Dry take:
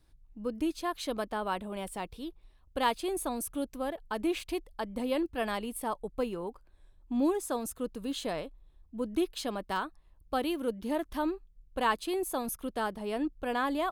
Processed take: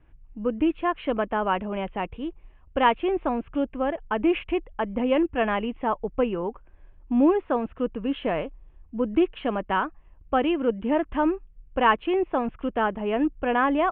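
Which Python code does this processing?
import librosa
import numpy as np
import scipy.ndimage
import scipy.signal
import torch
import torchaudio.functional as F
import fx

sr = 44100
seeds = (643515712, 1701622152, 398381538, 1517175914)

y = scipy.signal.sosfilt(scipy.signal.butter(12, 3000.0, 'lowpass', fs=sr, output='sos'), x)
y = F.gain(torch.from_numpy(y), 8.5).numpy()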